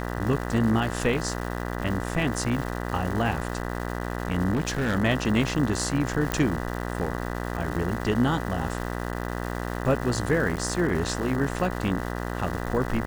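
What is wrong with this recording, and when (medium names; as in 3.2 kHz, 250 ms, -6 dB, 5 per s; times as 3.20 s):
buzz 60 Hz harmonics 33 -31 dBFS
crackle 510 per s -33 dBFS
4.53–4.96 s: clipped -21.5 dBFS
6.32 s: pop -11 dBFS
10.56–10.57 s: dropout 8.8 ms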